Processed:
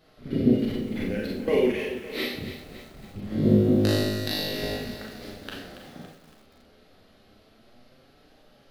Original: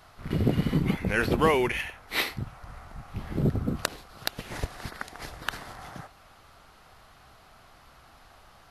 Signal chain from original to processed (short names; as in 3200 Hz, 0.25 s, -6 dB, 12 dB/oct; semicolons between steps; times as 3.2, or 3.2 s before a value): graphic EQ 250/500/1000/4000/8000 Hz +11/+9/-11/+5/-7 dB; 0.5–1.48 negative-ratio compressor -28 dBFS, ratio -1; flange 0.24 Hz, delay 6.3 ms, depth 6.9 ms, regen +43%; vibrato 7.6 Hz 11 cents; 3.24–4.77 flutter echo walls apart 3.3 m, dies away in 1.4 s; Schroeder reverb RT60 0.54 s, combs from 29 ms, DRR -2.5 dB; lo-fi delay 0.281 s, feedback 55%, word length 7-bit, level -11 dB; gain -4.5 dB